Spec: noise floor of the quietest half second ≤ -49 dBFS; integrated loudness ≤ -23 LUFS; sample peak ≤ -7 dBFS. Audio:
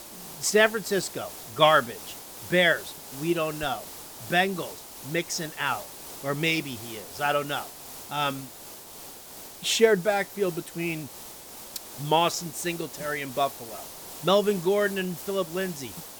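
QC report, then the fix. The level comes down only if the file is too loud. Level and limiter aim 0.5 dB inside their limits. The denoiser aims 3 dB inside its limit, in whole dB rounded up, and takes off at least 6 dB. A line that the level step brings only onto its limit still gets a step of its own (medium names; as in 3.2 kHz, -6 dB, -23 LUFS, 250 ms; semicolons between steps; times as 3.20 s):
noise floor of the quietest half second -44 dBFS: fail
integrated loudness -26.5 LUFS: pass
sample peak -5.5 dBFS: fail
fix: noise reduction 8 dB, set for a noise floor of -44 dBFS; peak limiter -7.5 dBFS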